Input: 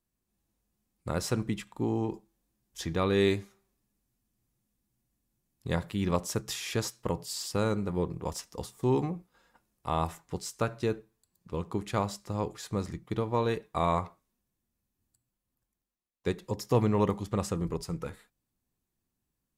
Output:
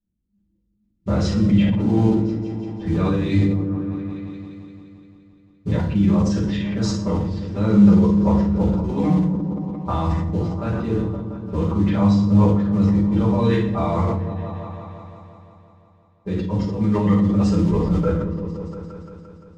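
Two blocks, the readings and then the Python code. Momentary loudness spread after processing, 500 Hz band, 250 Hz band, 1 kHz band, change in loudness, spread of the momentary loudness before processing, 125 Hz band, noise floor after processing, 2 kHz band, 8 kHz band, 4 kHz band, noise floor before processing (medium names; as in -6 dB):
16 LU, +6.0 dB, +16.5 dB, +5.0 dB, +12.0 dB, 11 LU, +14.5 dB, -65 dBFS, +4.0 dB, no reading, +2.5 dB, -85 dBFS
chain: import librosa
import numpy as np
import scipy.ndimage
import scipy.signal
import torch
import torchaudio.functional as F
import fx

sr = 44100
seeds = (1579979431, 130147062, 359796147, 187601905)

y = fx.dereverb_blind(x, sr, rt60_s=1.3)
y = fx.env_lowpass(y, sr, base_hz=330.0, full_db=-25.5)
y = fx.noise_reduce_blind(y, sr, reduce_db=10)
y = fx.low_shelf(y, sr, hz=270.0, db=5.5)
y = fx.over_compress(y, sr, threshold_db=-31.0, ratio=-1.0)
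y = fx.mod_noise(y, sr, seeds[0], snr_db=22)
y = fx.air_absorb(y, sr, metres=130.0)
y = fx.echo_opening(y, sr, ms=173, hz=200, octaves=1, feedback_pct=70, wet_db=-6)
y = fx.rev_fdn(y, sr, rt60_s=0.68, lf_ratio=1.25, hf_ratio=0.85, size_ms=30.0, drr_db=-9.5)
y = fx.sustainer(y, sr, db_per_s=33.0)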